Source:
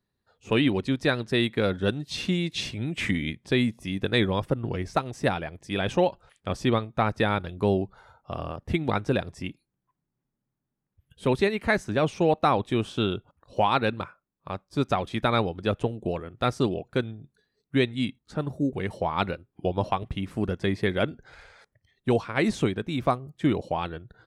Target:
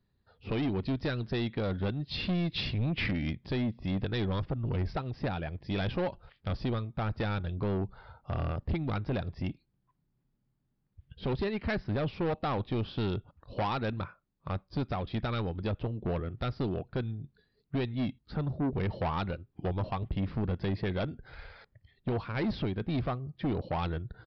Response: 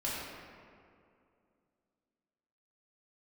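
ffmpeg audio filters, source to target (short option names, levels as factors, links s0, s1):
-af "lowshelf=f=170:g=11,alimiter=limit=0.188:level=0:latency=1:release=419,aresample=11025,asoftclip=type=tanh:threshold=0.0501,aresample=44100"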